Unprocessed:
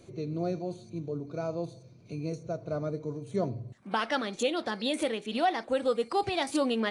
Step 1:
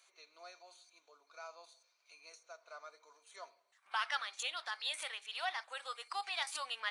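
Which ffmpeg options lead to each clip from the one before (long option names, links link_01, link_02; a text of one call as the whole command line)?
ffmpeg -i in.wav -af "highpass=frequency=1000:width=0.5412,highpass=frequency=1000:width=1.3066,volume=-3.5dB" out.wav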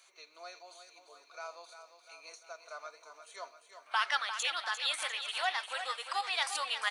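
ffmpeg -i in.wav -af "aecho=1:1:348|696|1044|1392|1740|2088|2436:0.335|0.198|0.117|0.0688|0.0406|0.0239|0.0141,volume=5.5dB" out.wav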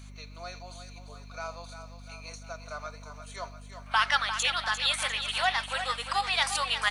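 ffmpeg -i in.wav -af "aeval=exprs='val(0)+0.00282*(sin(2*PI*50*n/s)+sin(2*PI*2*50*n/s)/2+sin(2*PI*3*50*n/s)/3+sin(2*PI*4*50*n/s)/4+sin(2*PI*5*50*n/s)/5)':channel_layout=same,volume=6dB" out.wav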